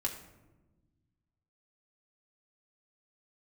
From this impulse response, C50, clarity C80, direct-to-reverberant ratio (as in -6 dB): 8.5 dB, 10.5 dB, -1.0 dB